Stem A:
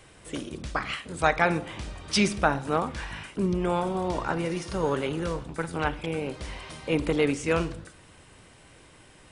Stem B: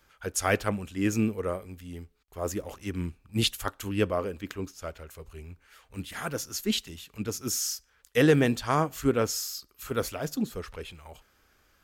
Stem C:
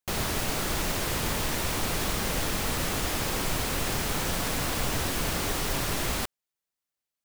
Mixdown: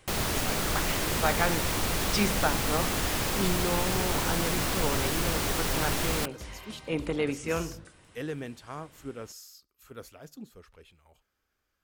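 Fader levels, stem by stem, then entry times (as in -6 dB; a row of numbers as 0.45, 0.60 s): -5.0, -15.0, 0.0 dB; 0.00, 0.00, 0.00 s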